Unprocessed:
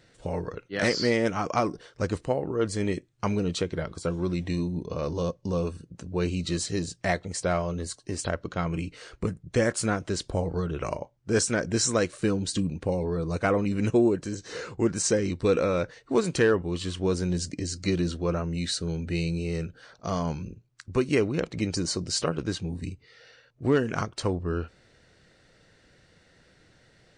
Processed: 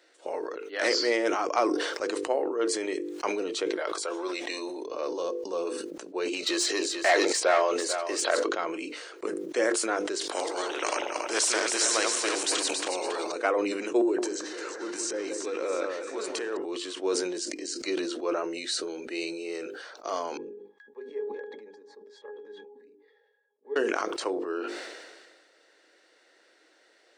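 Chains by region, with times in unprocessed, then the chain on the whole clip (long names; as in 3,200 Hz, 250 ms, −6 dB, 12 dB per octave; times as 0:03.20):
0:03.78–0:04.84: high-pass filter 520 Hz + envelope flattener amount 70%
0:06.33–0:08.49: mid-hump overdrive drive 16 dB, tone 5,000 Hz, clips at −11.5 dBFS + single-tap delay 443 ms −11 dB
0:10.21–0:13.32: feedback delay that plays each chunk backwards 139 ms, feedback 42%, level −4 dB + every bin compressed towards the loudest bin 2 to 1
0:14.01–0:16.57: transient designer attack −9 dB, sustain +5 dB + downward compressor, threshold −27 dBFS + delay that swaps between a low-pass and a high-pass 174 ms, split 1,700 Hz, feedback 66%, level −3.5 dB
0:20.37–0:23.76: high-pass filter 330 Hz + resonances in every octave G#, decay 0.15 s + one half of a high-frequency compander decoder only
whole clip: elliptic high-pass filter 320 Hz, stop band 70 dB; mains-hum notches 50/100/150/200/250/300/350/400/450/500 Hz; level that may fall only so fast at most 35 dB per second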